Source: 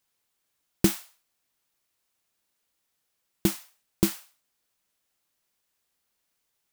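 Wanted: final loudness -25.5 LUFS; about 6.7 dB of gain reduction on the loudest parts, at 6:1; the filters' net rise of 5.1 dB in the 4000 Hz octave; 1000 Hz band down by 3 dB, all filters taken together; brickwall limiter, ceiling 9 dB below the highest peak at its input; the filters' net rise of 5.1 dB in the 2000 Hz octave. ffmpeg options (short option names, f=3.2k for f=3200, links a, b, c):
-af "equalizer=f=1k:t=o:g=-6.5,equalizer=f=2k:t=o:g=6.5,equalizer=f=4k:t=o:g=5,acompressor=threshold=-23dB:ratio=6,volume=13dB,alimiter=limit=-3dB:level=0:latency=1"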